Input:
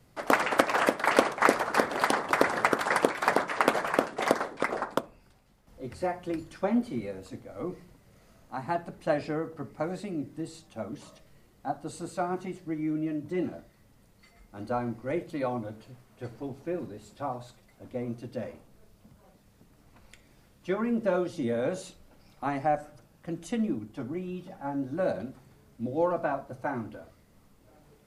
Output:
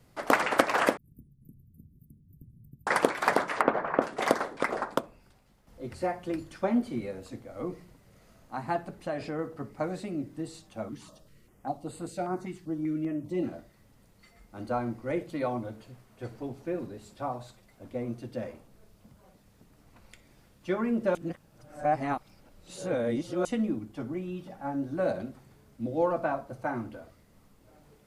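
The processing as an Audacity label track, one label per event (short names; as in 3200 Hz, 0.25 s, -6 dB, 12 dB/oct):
0.970000	2.870000	inverse Chebyshev band-stop 680–5600 Hz, stop band 80 dB
3.610000	4.020000	LPF 1500 Hz
8.920000	9.390000	compressor 2.5:1, threshold -31 dBFS
10.890000	13.430000	stepped notch 5.1 Hz 580–5700 Hz
21.150000	23.450000	reverse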